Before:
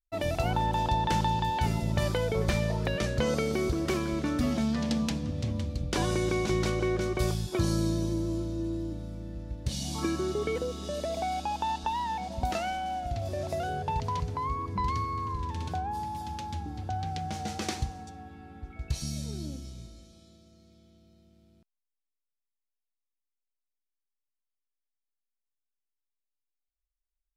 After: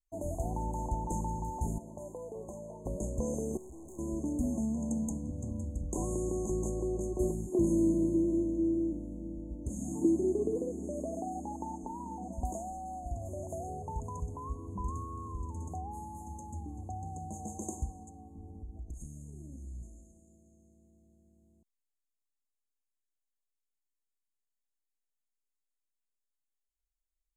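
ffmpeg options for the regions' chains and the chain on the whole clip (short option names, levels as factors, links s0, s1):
-filter_complex "[0:a]asettb=1/sr,asplit=3[s0][s1][s2];[s0]atrim=end=1.784[s3];[s1]atrim=start=1.78:end=2.86,asetpts=PTS-STARTPTS,afade=t=in:d=0.004:c=qsin,afade=t=out:st=1.076:d=0.004:c=qsin,highpass=f=680:p=1,equalizer=f=11000:t=o:w=2.6:g=-12.5[s4];[s2]atrim=start=2.856[s5];[s3][s4]acrossfade=d=0.004:c1=hsin:c2=qsin[s6];[s6][s5]acrossfade=d=0.004:c1=qsin:c2=hsin,asettb=1/sr,asplit=3[s7][s8][s9];[s7]atrim=end=3.574[s10];[s8]atrim=start=3.57:end=3.99,asetpts=PTS-STARTPTS,afade=t=in:d=0.004:c=qsin,afade=t=out:st=0.416:d=0.004:c=qsin,highshelf=f=12000:g=-4,aeval=exprs='(tanh(141*val(0)+0.3)-tanh(0.3))/141':c=same[s11];[s9]atrim=start=3.986[s12];[s10][s11]acrossfade=d=0.004:c1=hsin:c2=qsin[s13];[s13][s12]acrossfade=d=0.004:c1=qsin:c2=hsin,asettb=1/sr,asplit=3[s14][s15][s16];[s14]atrim=end=7.194[s17];[s15]atrim=start=7.19:end=12.33,asetpts=PTS-STARTPTS,afade=t=in:d=0.004:c=qsin,afade=t=out:st=5.136:d=0.004:c=qsin,equalizer=f=310:t=o:w=1.9:g=12.5,flanger=delay=2.6:depth=4.8:regen=-66:speed=1.6:shape=triangular[s18];[s16]atrim=start=12.326[s19];[s17][s18]acrossfade=d=0.004:c1=hsin:c2=qsin[s20];[s20][s19]acrossfade=d=0.004:c1=qsin:c2=hsin,asettb=1/sr,asplit=3[s21][s22][s23];[s21]atrim=end=18.354[s24];[s22]atrim=start=18.35:end=19.83,asetpts=PTS-STARTPTS,afade=t=in:d=0.004:c=qsin,afade=t=out:st=1.476:d=0.004:c=qsin,lowshelf=f=220:g=11,acompressor=threshold=0.0141:ratio=5:attack=3.2:release=140:knee=1:detection=peak,asplit=2[s25][s26];[s26]adelay=34,volume=0.398[s27];[s25][s27]amix=inputs=2:normalize=0,atrim=end_sample=65268[s28];[s23]atrim=start=19.826[s29];[s24][s28]acrossfade=d=0.004:c1=hsin:c2=qsin[s30];[s30][s29]acrossfade=d=0.004:c1=qsin:c2=hsin,highshelf=f=8700:g=-9,afftfilt=real='re*(1-between(b*sr/4096,1100,6300))':imag='im*(1-between(b*sr/4096,1100,6300))':win_size=4096:overlap=0.75,equalizer=f=125:t=o:w=1:g=-11,equalizer=f=500:t=o:w=1:g=-5,equalizer=f=1000:t=o:w=1:g=-10,equalizer=f=2000:t=o:w=1:g=-5,equalizer=f=4000:t=o:w=1:g=6,equalizer=f=8000:t=o:w=1:g=4"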